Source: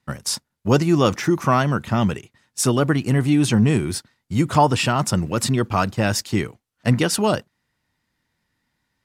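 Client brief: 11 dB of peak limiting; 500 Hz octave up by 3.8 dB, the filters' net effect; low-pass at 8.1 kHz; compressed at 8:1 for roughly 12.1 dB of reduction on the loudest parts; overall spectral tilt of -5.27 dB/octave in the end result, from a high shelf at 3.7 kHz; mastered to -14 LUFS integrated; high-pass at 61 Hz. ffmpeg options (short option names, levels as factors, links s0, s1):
-af "highpass=61,lowpass=8100,equalizer=f=500:t=o:g=5,highshelf=f=3700:g=-6,acompressor=threshold=0.0891:ratio=8,volume=7.08,alimiter=limit=0.708:level=0:latency=1"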